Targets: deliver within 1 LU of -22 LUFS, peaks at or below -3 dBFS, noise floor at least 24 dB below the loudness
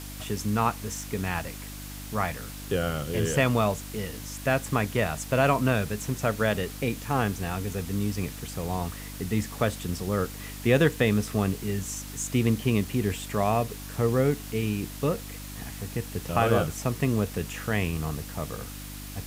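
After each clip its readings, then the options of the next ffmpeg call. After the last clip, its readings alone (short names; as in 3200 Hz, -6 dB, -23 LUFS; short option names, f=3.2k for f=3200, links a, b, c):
hum 50 Hz; harmonics up to 300 Hz; hum level -38 dBFS; noise floor -39 dBFS; noise floor target -52 dBFS; loudness -28.0 LUFS; peak -7.0 dBFS; loudness target -22.0 LUFS
-> -af "bandreject=f=50:t=h:w=4,bandreject=f=100:t=h:w=4,bandreject=f=150:t=h:w=4,bandreject=f=200:t=h:w=4,bandreject=f=250:t=h:w=4,bandreject=f=300:t=h:w=4"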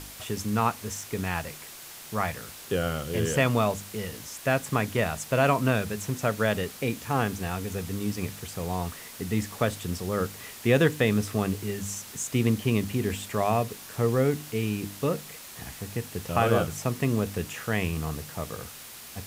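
hum none; noise floor -44 dBFS; noise floor target -52 dBFS
-> -af "afftdn=nr=8:nf=-44"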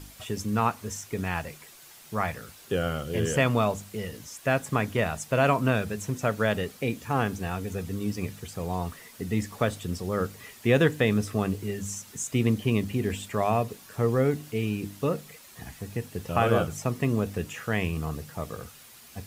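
noise floor -51 dBFS; noise floor target -53 dBFS
-> -af "afftdn=nr=6:nf=-51"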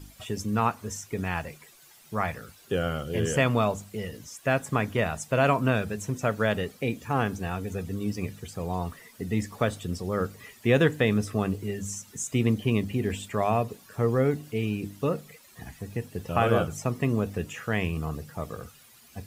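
noise floor -55 dBFS; loudness -28.5 LUFS; peak -7.0 dBFS; loudness target -22.0 LUFS
-> -af "volume=6.5dB,alimiter=limit=-3dB:level=0:latency=1"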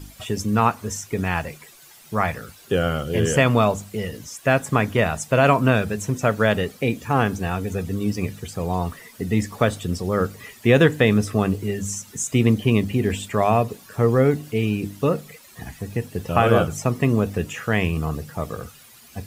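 loudness -22.0 LUFS; peak -3.0 dBFS; noise floor -48 dBFS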